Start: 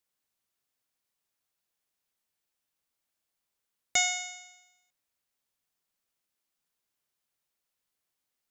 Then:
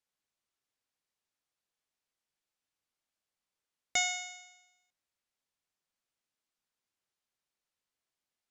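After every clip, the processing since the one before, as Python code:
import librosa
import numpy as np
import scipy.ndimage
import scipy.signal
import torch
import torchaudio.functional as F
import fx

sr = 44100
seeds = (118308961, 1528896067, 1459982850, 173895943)

y = scipy.signal.sosfilt(scipy.signal.bessel(2, 7600.0, 'lowpass', norm='mag', fs=sr, output='sos'), x)
y = fx.hum_notches(y, sr, base_hz=60, count=3)
y = F.gain(torch.from_numpy(y), -3.0).numpy()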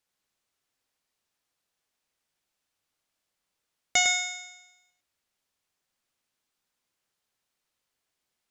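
y = x + 10.0 ** (-6.0 / 20.0) * np.pad(x, (int(104 * sr / 1000.0), 0))[:len(x)]
y = F.gain(torch.from_numpy(y), 6.5).numpy()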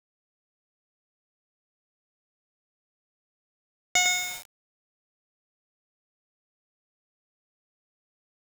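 y = fx.quant_dither(x, sr, seeds[0], bits=6, dither='none')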